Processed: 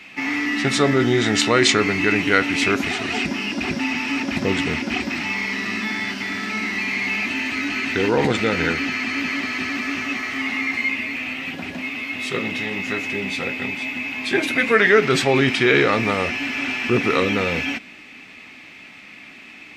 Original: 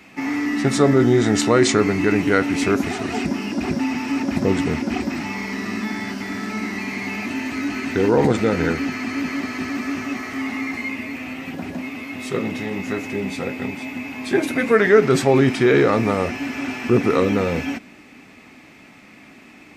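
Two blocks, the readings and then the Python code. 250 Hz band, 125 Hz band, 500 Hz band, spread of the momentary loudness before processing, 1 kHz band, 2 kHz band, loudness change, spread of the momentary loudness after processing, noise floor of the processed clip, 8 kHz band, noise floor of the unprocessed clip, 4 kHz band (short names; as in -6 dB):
-3.0 dB, -3.5 dB, -2.5 dB, 12 LU, +0.5 dB, +6.0 dB, +0.5 dB, 12 LU, -42 dBFS, +1.0 dB, -46 dBFS, +7.0 dB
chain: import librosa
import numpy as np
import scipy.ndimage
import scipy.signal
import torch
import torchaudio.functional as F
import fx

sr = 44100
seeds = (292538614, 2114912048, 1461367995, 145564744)

y = fx.peak_eq(x, sr, hz=2900.0, db=12.5, octaves=1.9)
y = y * librosa.db_to_amplitude(-3.5)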